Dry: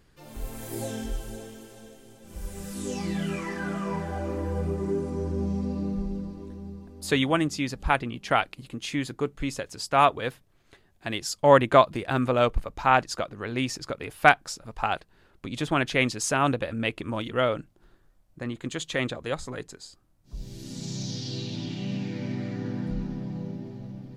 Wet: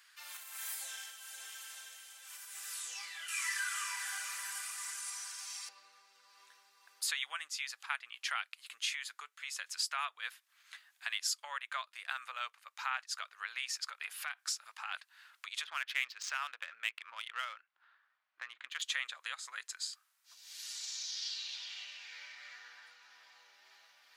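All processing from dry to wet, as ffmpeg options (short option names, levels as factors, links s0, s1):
-filter_complex "[0:a]asettb=1/sr,asplit=3[s0][s1][s2];[s0]atrim=end=3.284[s3];[s1]atrim=start=3.28:end=5.69,asetpts=PTS-STARTPTS,afade=t=in:d=0.004:c=qsin,afade=t=out:st=2.406:d=0.004:c=qsin,highpass=1300,equalizer=f=10000:w=0.52:g=14.5[s4];[s2]atrim=start=5.686[s5];[s3][s4]acrossfade=d=0.004:c1=hsin:c2=qsin[s6];[s6][s5]acrossfade=d=0.004:c1=qsin:c2=hsin,asettb=1/sr,asplit=3[s7][s8][s9];[s7]atrim=end=13.854[s10];[s8]atrim=start=13.85:end=14.94,asetpts=PTS-STARTPTS,afade=t=in:d=0.004:c=qsin,afade=t=out:st=1.086:d=0.004:c=qsin,acompressor=threshold=0.0501:ratio=5:attack=3.2:release=140:knee=1:detection=peak,tremolo=f=270:d=0.462[s11];[s9]atrim=start=14.936[s12];[s10][s11]acrossfade=d=0.004:c1=hsin:c2=qsin[s13];[s13][s12]acrossfade=d=0.004:c1=qsin:c2=hsin,asettb=1/sr,asplit=3[s14][s15][s16];[s14]atrim=end=15.644[s17];[s15]atrim=start=15.64:end=18.82,asetpts=PTS-STARTPTS,afade=t=in:d=0.004:c=qsin,afade=t=out:st=3.176:d=0.004:c=qsin,highpass=140,lowpass=5000,adynamicsmooth=sensitivity=6.5:basefreq=2500[s18];[s16]atrim=start=18.816[s19];[s17][s18]acrossfade=d=0.004:c1=hsin:c2=qsin[s20];[s20][s19]acrossfade=d=0.004:c1=qsin:c2=hsin,acompressor=threshold=0.01:ratio=3,highpass=f=1300:w=0.5412,highpass=f=1300:w=1.3066,volume=2.11"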